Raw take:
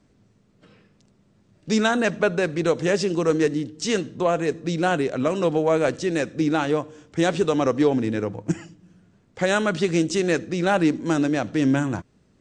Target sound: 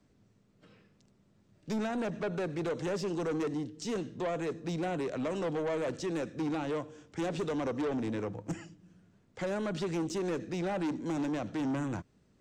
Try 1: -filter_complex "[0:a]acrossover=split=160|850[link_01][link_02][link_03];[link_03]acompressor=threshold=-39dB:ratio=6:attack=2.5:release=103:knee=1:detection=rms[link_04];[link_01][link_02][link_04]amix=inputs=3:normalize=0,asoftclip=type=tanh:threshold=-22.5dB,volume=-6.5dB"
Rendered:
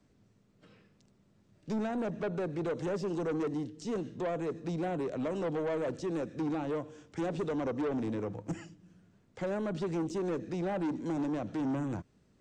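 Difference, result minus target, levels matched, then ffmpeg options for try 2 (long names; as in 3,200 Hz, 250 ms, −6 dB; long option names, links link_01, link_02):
downward compressor: peak gain reduction +7.5 dB
-filter_complex "[0:a]acrossover=split=160|850[link_01][link_02][link_03];[link_03]acompressor=threshold=-30dB:ratio=6:attack=2.5:release=103:knee=1:detection=rms[link_04];[link_01][link_02][link_04]amix=inputs=3:normalize=0,asoftclip=type=tanh:threshold=-22.5dB,volume=-6.5dB"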